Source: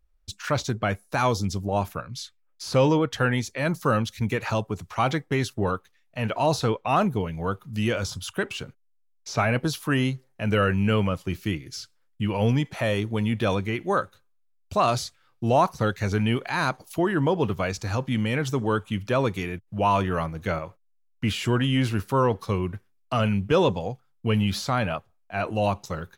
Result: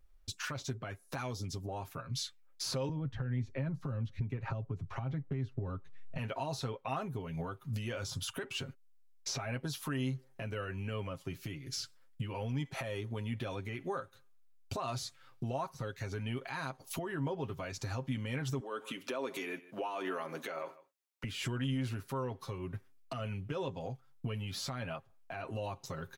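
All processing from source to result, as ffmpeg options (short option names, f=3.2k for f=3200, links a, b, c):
-filter_complex "[0:a]asettb=1/sr,asplit=3[a][b][c];[a]atrim=end=2.894[d];[b]atrim=start=2.89:end=6.18,asetpts=PTS-STARTPTS,afade=t=in:d=0.004:c=qsin,afade=t=out:st=3.286:d=0.004:c=qsin,aemphasis=mode=reproduction:type=riaa,acrossover=split=230|3300[e][f][g];[e]acompressor=threshold=-21dB:ratio=4[h];[f]acompressor=threshold=-28dB:ratio=4[i];[g]acompressor=threshold=-58dB:ratio=4[j];[h][i][j]amix=inputs=3:normalize=0[k];[c]atrim=start=6.176[l];[d][k]acrossfade=d=0.004:c1=hsin:c2=qsin[m];[m][l]acrossfade=d=0.004:c1=qsin:c2=hsin,asettb=1/sr,asplit=3[n][o][p];[n]atrim=end=18.604[q];[o]atrim=start=18.6:end=21.24,asetpts=PTS-STARTPTS,afade=t=in:d=0.004:c=qsin,afade=t=out:st=2.636:d=0.004:c=qsin,highpass=f=270:w=0.5412,highpass=f=270:w=1.3066,acompressor=threshold=-35dB:ratio=3:attack=3.2:release=140:knee=1:detection=peak,aecho=1:1:153:0.0794,atrim=end_sample=116424[r];[p]atrim=start=21.236[s];[q][r]acrossfade=d=0.004:c1=hsin:c2=qsin[t];[t][s]acrossfade=d=0.004:c1=qsin:c2=hsin,acompressor=threshold=-36dB:ratio=6,alimiter=level_in=7dB:limit=-24dB:level=0:latency=1:release=246,volume=-7dB,aecho=1:1:7.5:0.59,volume=2dB"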